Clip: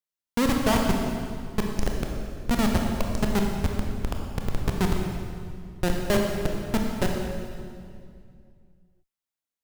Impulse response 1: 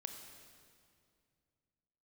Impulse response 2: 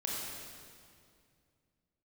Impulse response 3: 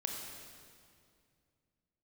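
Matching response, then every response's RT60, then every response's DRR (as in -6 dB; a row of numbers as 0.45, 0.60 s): 3; 2.3, 2.3, 2.3 s; 5.0, -4.5, 0.5 dB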